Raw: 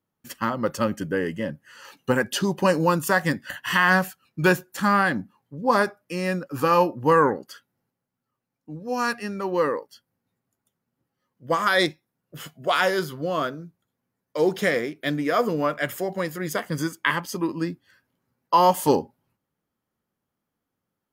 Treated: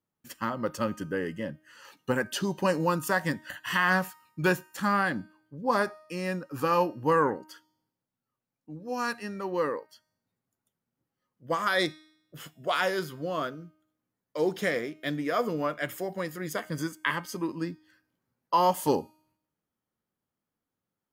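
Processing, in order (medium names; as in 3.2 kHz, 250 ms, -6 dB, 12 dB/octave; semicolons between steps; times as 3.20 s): feedback comb 310 Hz, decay 0.75 s, mix 50%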